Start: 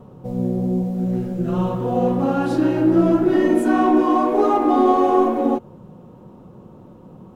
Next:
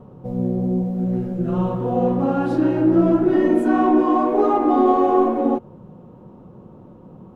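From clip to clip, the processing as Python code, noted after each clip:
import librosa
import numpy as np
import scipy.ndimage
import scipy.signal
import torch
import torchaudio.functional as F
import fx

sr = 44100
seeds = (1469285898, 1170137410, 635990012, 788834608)

y = fx.high_shelf(x, sr, hz=3000.0, db=-10.5)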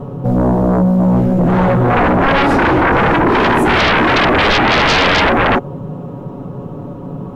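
y = x + 0.58 * np.pad(x, (int(7.1 * sr / 1000.0), 0))[:len(x)]
y = fx.fold_sine(y, sr, drive_db=16, ceiling_db=-4.0)
y = y * 10.0 ** (-4.5 / 20.0)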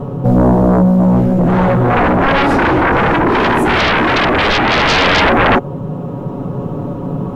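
y = fx.rider(x, sr, range_db=10, speed_s=2.0)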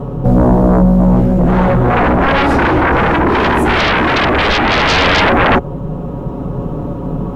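y = fx.octave_divider(x, sr, octaves=2, level_db=-5.0)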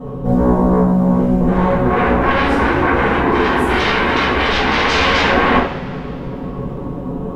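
y = fx.rev_double_slope(x, sr, seeds[0], early_s=0.57, late_s=3.0, knee_db=-19, drr_db=-8.5)
y = y * 10.0 ** (-12.0 / 20.0)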